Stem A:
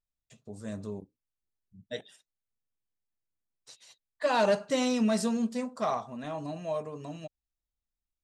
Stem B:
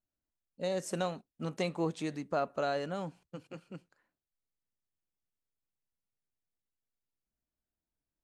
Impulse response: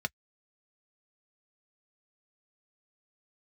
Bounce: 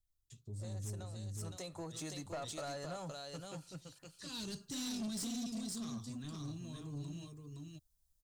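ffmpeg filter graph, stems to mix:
-filter_complex "[0:a]bass=f=250:g=13,treble=f=4k:g=-8,acrossover=split=320|3000[a][b][c];[b]acompressor=threshold=-43dB:ratio=2.5[d];[a][d][c]amix=inputs=3:normalize=0,firequalizer=gain_entry='entry(100,0);entry(200,-13);entry(350,0);entry(580,-21);entry(1100,-6)':delay=0.05:min_phase=1,volume=-4.5dB,asplit=2[e][f];[f]volume=-4dB[g];[1:a]acompressor=threshold=-35dB:ratio=5,asubboost=boost=10.5:cutoff=81,volume=-5dB,afade=t=in:st=1.23:d=0.78:silence=0.281838,asplit=4[h][i][j][k];[i]volume=-5dB[l];[j]volume=-4dB[m];[k]apad=whole_len=367417[n];[e][n]sidechaincompress=threshold=-51dB:ratio=8:attack=16:release=1240[o];[2:a]atrim=start_sample=2205[p];[l][p]afir=irnorm=-1:irlink=0[q];[g][m]amix=inputs=2:normalize=0,aecho=0:1:516:1[r];[o][h][q][r]amix=inputs=4:normalize=0,aexciter=amount=7.1:drive=3.8:freq=3.3k,asoftclip=type=tanh:threshold=-36.5dB"

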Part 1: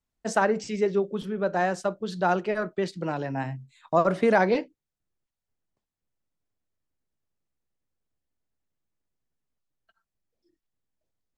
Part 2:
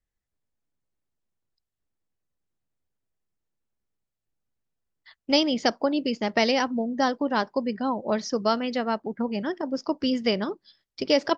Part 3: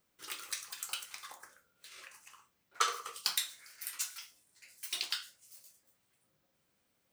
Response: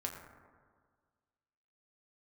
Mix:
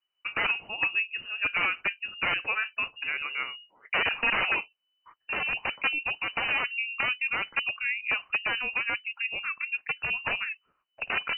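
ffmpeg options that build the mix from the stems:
-filter_complex "[0:a]adynamicequalizer=threshold=0.0158:dfrequency=2200:dqfactor=0.7:tfrequency=2200:tqfactor=0.7:attack=5:release=100:ratio=0.375:range=2.5:mode=boostabove:tftype=highshelf,volume=1.5dB[a];[1:a]equalizer=f=500:t=o:w=0.33:g=4,equalizer=f=1k:t=o:w=0.33:g=-4,equalizer=f=5k:t=o:w=0.33:g=7,volume=0.5dB,asplit=2[b][c];[2:a]afwtdn=0.00282,adelay=2400,volume=-9.5dB[d];[c]apad=whole_len=420042[e];[d][e]sidechaingate=range=-46dB:threshold=-44dB:ratio=16:detection=peak[f];[a][b][f]amix=inputs=3:normalize=0,equalizer=f=170:t=o:w=2.6:g=-9.5,aeval=exprs='(mod(7.5*val(0)+1,2)-1)/7.5':c=same,lowpass=f=2.6k:t=q:w=0.5098,lowpass=f=2.6k:t=q:w=0.6013,lowpass=f=2.6k:t=q:w=0.9,lowpass=f=2.6k:t=q:w=2.563,afreqshift=-3000"

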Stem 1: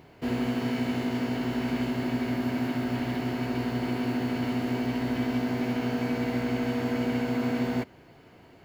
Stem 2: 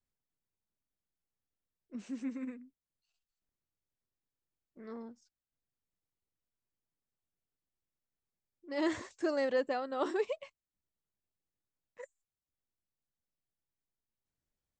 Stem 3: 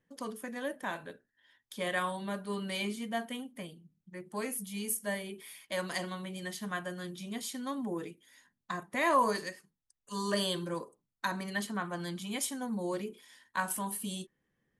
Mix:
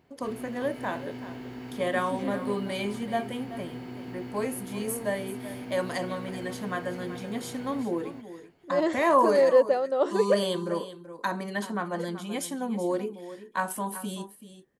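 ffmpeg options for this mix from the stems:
-filter_complex "[0:a]volume=-12.5dB,asplit=2[a][b];[b]volume=-5.5dB[c];[1:a]equalizer=f=540:t=o:w=0.77:g=12,volume=1dB[d];[2:a]equalizer=f=490:w=0.45:g=9.5,volume=-1.5dB,asplit=2[e][f];[f]volume=-13.5dB[g];[c][g]amix=inputs=2:normalize=0,aecho=0:1:381:1[h];[a][d][e][h]amix=inputs=4:normalize=0"

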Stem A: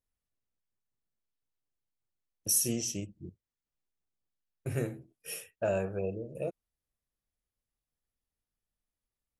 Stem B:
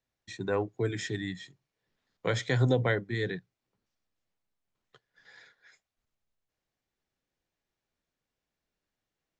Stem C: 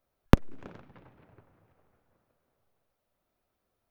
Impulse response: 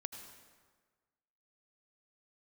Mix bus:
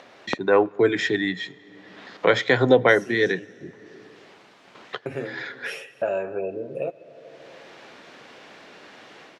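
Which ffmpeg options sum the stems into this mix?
-filter_complex "[0:a]aecho=1:1:7.3:0.46,adelay=400,volume=0.5dB,asplit=2[a][b];[b]volume=-10.5dB[c];[1:a]dynaudnorm=f=280:g=3:m=12.5dB,volume=1dB,asplit=3[d][e][f];[e]volume=-17.5dB[g];[2:a]volume=-6.5dB[h];[f]apad=whole_len=432295[i];[a][i]sidechaincompress=threshold=-27dB:ratio=8:attack=16:release=248[j];[3:a]atrim=start_sample=2205[k];[c][g]amix=inputs=2:normalize=0[l];[l][k]afir=irnorm=-1:irlink=0[m];[j][d][h][m]amix=inputs=4:normalize=0,acompressor=mode=upward:threshold=-18dB:ratio=2.5,highpass=290,lowpass=3.4k"

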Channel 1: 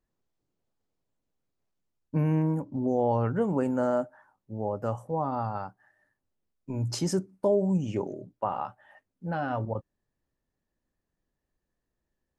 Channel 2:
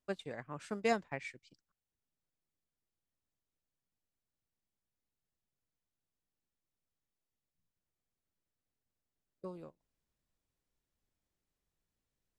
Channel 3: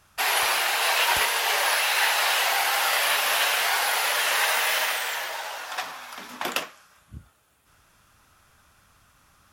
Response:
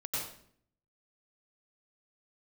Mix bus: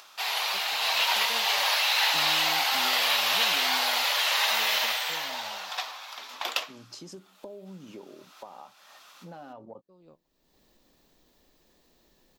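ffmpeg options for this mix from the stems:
-filter_complex "[0:a]highpass=200,highshelf=f=8.1k:g=7,acompressor=threshold=-29dB:ratio=6,volume=-11.5dB,asplit=2[a][b];[1:a]adelay=450,volume=-12.5dB[c];[2:a]highpass=640,dynaudnorm=f=210:g=9:m=5dB,volume=-5.5dB[d];[b]apad=whole_len=566144[e];[c][e]sidechaincompress=threshold=-55dB:ratio=8:attack=12:release=497[f];[a][f][d]amix=inputs=3:normalize=0,equalizer=f=100:t=o:w=0.67:g=-9,equalizer=f=1.6k:t=o:w=0.67:g=-6,equalizer=f=4k:t=o:w=0.67:g=6,equalizer=f=10k:t=o:w=0.67:g=-10,acompressor=mode=upward:threshold=-39dB:ratio=2.5"

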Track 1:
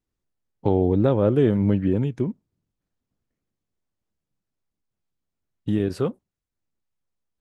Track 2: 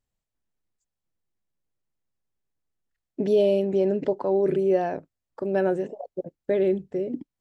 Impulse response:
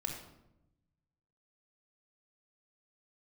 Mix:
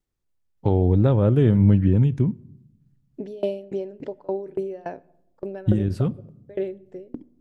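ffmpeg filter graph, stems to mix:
-filter_complex "[0:a]asubboost=boost=6:cutoff=190,volume=-1.5dB,asplit=2[a][b];[b]volume=-21dB[c];[1:a]aeval=exprs='val(0)*pow(10,-26*if(lt(mod(3.5*n/s,1),2*abs(3.5)/1000),1-mod(3.5*n/s,1)/(2*abs(3.5)/1000),(mod(3.5*n/s,1)-2*abs(3.5)/1000)/(1-2*abs(3.5)/1000))/20)':c=same,volume=-0.5dB,asplit=3[d][e][f];[e]volume=-18.5dB[g];[f]apad=whole_len=326472[h];[a][h]sidechaincompress=threshold=-30dB:ratio=4:attack=16:release=1090[i];[2:a]atrim=start_sample=2205[j];[c][g]amix=inputs=2:normalize=0[k];[k][j]afir=irnorm=-1:irlink=0[l];[i][d][l]amix=inputs=3:normalize=0"

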